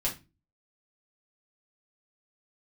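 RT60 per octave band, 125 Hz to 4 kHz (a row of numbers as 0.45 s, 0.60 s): 0.50 s, 0.45 s, 0.30 s, 0.25 s, 0.25 s, 0.25 s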